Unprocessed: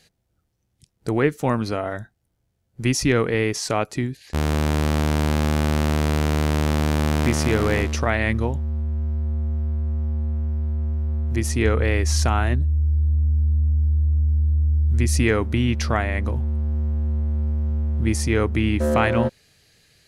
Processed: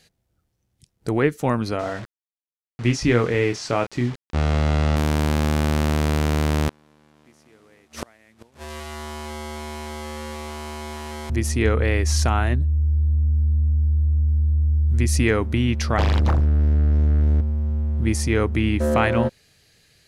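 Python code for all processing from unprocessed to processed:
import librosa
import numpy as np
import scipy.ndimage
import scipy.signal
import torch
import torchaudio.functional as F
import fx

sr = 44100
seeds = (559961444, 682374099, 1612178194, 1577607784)

y = fx.chain(x, sr, fx.doubler(ms=25.0, db=-7.5),
    fx.quant_dither(seeds[0], bits=6, dither='none'),
    fx.air_absorb(metres=98.0), at=(1.79, 4.96))
y = fx.chain(y, sr, fx.delta_mod(bps=64000, step_db=-25.5),
    fx.highpass(hz=180.0, slope=12),
    fx.gate_flip(shuts_db=-14.0, range_db=-32), at=(6.68, 11.3))
y = fx.chain(y, sr, fx.curve_eq(hz=(130.0, 270.0, 660.0, 1000.0, 1600.0, 2300.0, 3500.0, 6400.0, 12000.0), db=(0, -5, -11, 11, -21, -15, 12, 5, -13)),
    fx.leveller(passes=3),
    fx.doppler_dist(depth_ms=0.84), at=(15.98, 17.41))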